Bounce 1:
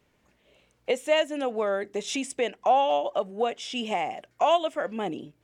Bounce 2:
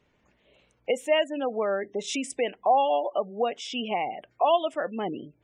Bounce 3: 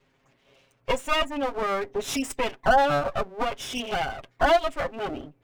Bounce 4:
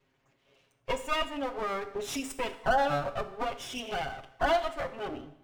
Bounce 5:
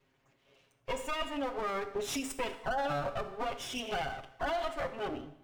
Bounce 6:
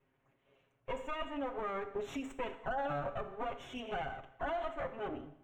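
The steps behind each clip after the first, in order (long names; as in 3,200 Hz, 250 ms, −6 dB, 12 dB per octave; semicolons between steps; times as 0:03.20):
gate on every frequency bin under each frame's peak −25 dB strong
lower of the sound and its delayed copy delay 7.4 ms; level +3.5 dB
coupled-rooms reverb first 0.72 s, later 3 s, from −27 dB, DRR 9 dB; level −6.5 dB
brickwall limiter −25 dBFS, peak gain reduction 10 dB
moving average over 9 samples; level −3 dB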